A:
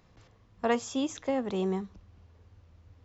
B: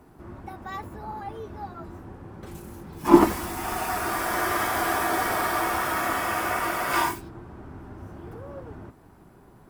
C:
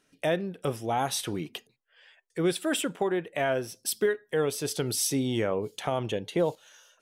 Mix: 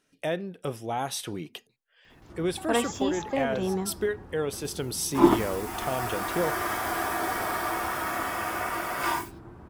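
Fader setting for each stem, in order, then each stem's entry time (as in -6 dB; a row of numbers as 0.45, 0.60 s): +1.0, -4.0, -2.5 dB; 2.05, 2.10, 0.00 s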